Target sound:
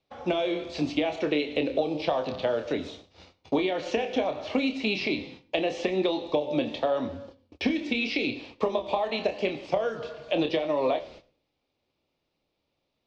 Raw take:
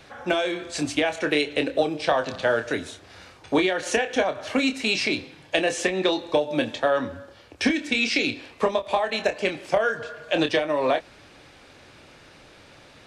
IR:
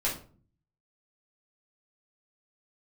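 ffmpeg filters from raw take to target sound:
-filter_complex "[0:a]flanger=delay=7.6:depth=8.3:regen=84:speed=0.84:shape=triangular,agate=range=0.0398:threshold=0.00355:ratio=16:detection=peak,lowpass=f=5600:w=0.5412,lowpass=f=5600:w=1.3066,equalizer=f=110:t=o:w=0.24:g=-8,acompressor=threshold=0.0501:ratio=6,equalizer=f=1600:t=o:w=0.62:g=-14.5,asplit=2[s0][s1];[1:a]atrim=start_sample=2205,asetrate=40572,aresample=44100,adelay=80[s2];[s1][s2]afir=irnorm=-1:irlink=0,volume=0.0376[s3];[s0][s3]amix=inputs=2:normalize=0,acrossover=split=4000[s4][s5];[s5]acompressor=threshold=0.00126:ratio=4:attack=1:release=60[s6];[s4][s6]amix=inputs=2:normalize=0,volume=1.88"

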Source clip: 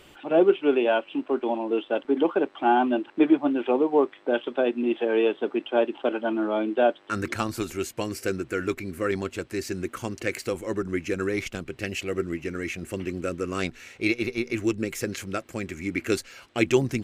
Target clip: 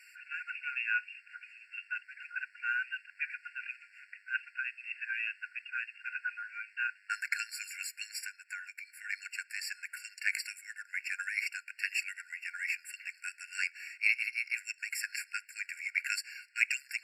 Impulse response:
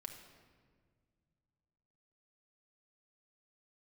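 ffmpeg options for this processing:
-filter_complex "[0:a]asplit=3[s0][s1][s2];[s0]afade=t=out:st=8.23:d=0.02[s3];[s1]acompressor=threshold=0.0251:ratio=6,afade=t=in:st=8.23:d=0.02,afade=t=out:st=9.09:d=0.02[s4];[s2]afade=t=in:st=9.09:d=0.02[s5];[s3][s4][s5]amix=inputs=3:normalize=0,asplit=2[s6][s7];[1:a]atrim=start_sample=2205,atrim=end_sample=3528[s8];[s7][s8]afir=irnorm=-1:irlink=0,volume=0.237[s9];[s6][s9]amix=inputs=2:normalize=0,afftfilt=real='re*eq(mod(floor(b*sr/1024/1400),2),1)':imag='im*eq(mod(floor(b*sr/1024/1400),2),1)':win_size=1024:overlap=0.75"

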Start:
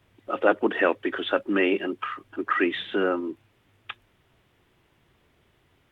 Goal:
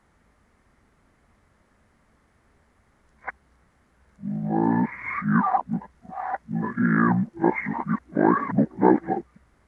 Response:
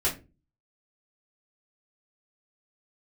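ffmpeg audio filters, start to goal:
-af "areverse,asetrate=26945,aresample=44100,volume=1.26"

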